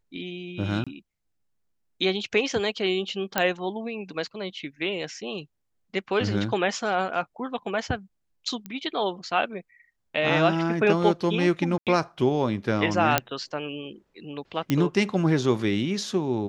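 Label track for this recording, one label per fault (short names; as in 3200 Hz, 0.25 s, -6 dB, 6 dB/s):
0.840000	0.870000	gap 26 ms
3.380000	3.380000	pop -6 dBFS
8.660000	8.660000	pop -22 dBFS
11.780000	11.870000	gap 87 ms
13.180000	13.180000	pop -3 dBFS
14.700000	14.700000	pop -11 dBFS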